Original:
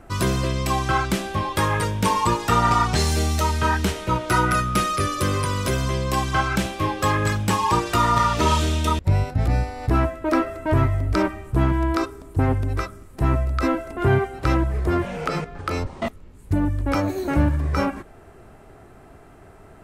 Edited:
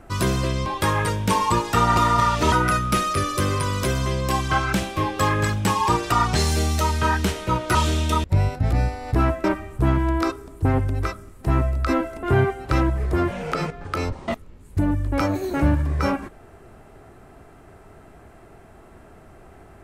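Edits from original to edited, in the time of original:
0.66–1.41 s: delete
2.72–4.35 s: swap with 7.95–8.50 s
10.19–11.18 s: delete

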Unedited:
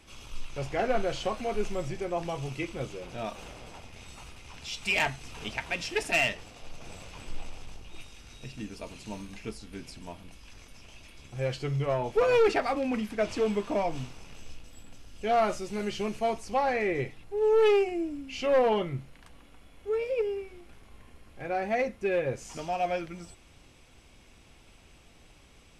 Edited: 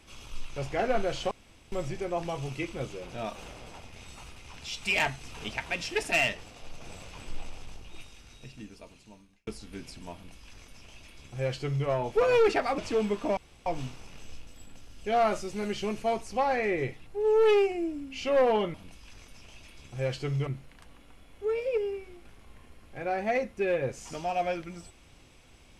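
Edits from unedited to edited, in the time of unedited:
1.31–1.72 s: room tone
7.85–9.47 s: fade out
10.14–11.87 s: copy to 18.91 s
12.78–13.24 s: delete
13.83 s: insert room tone 0.29 s

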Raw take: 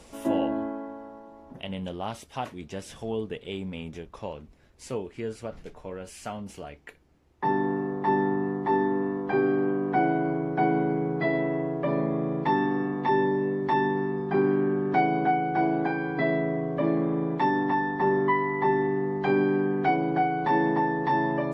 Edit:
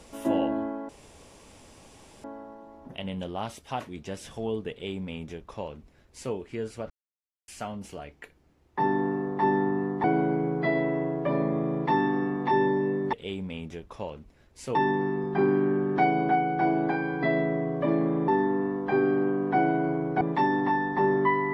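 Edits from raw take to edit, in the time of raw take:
0.89 s: insert room tone 1.35 s
3.36–4.98 s: copy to 13.71 s
5.55–6.13 s: mute
8.69–10.62 s: move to 17.24 s

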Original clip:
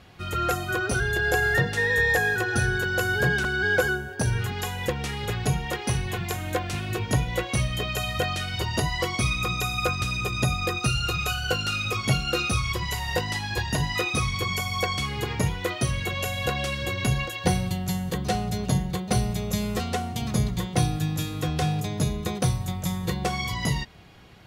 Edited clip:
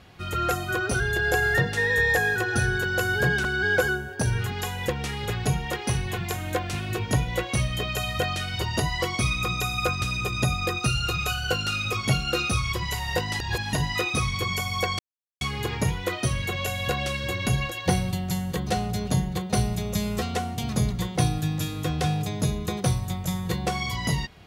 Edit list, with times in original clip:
13.40–13.73 s: reverse
14.99 s: insert silence 0.42 s

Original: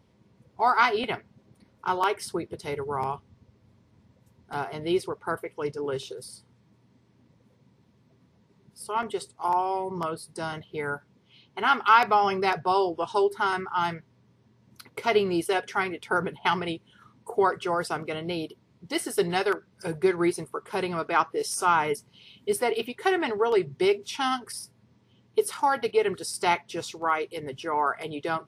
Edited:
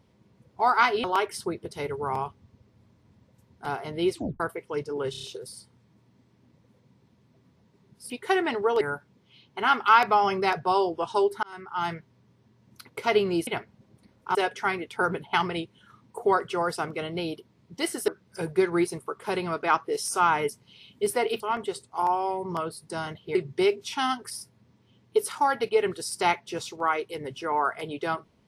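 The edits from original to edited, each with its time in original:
1.04–1.92 s: move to 15.47 s
5.02 s: tape stop 0.26 s
5.99 s: stutter 0.03 s, 5 plays
8.86–10.81 s: swap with 22.86–23.57 s
13.43–13.95 s: fade in
19.20–19.54 s: delete

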